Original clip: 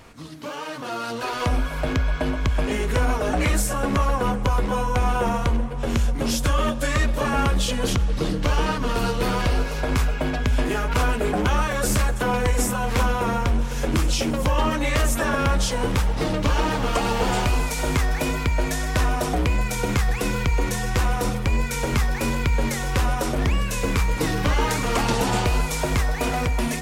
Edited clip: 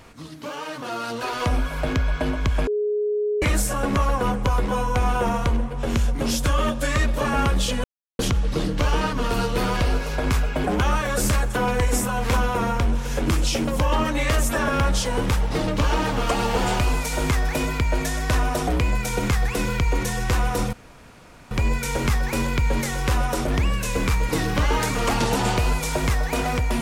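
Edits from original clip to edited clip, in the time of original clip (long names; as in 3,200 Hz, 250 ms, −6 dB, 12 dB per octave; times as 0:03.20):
0:02.67–0:03.42: beep over 418 Hz −20 dBFS
0:07.84: splice in silence 0.35 s
0:10.29–0:11.30: remove
0:21.39: splice in room tone 0.78 s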